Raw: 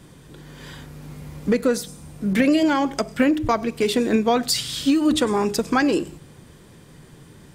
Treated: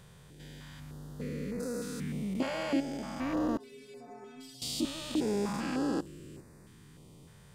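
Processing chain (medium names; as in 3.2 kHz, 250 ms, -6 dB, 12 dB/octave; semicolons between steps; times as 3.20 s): spectrogram pixelated in time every 400 ms; 3.57–4.62 s: inharmonic resonator 130 Hz, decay 0.82 s, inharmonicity 0.008; step-sequenced notch 3.3 Hz 300–3200 Hz; trim -6 dB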